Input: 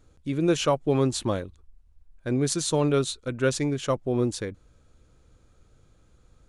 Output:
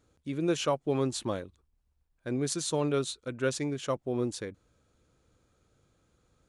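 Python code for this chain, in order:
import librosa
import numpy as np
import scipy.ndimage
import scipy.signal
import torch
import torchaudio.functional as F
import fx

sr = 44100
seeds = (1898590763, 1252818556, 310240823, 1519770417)

y = fx.highpass(x, sr, hz=130.0, slope=6)
y = y * librosa.db_to_amplitude(-5.0)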